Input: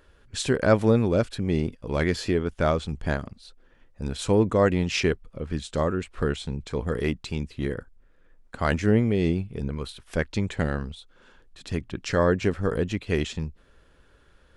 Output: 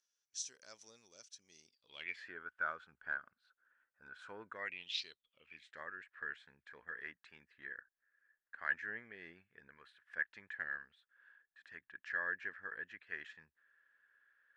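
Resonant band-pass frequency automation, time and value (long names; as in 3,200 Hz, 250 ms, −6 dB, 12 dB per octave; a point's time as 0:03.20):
resonant band-pass, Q 11
0:01.64 5,900 Hz
0:02.33 1,500 Hz
0:04.50 1,500 Hz
0:05.04 4,500 Hz
0:05.78 1,700 Hz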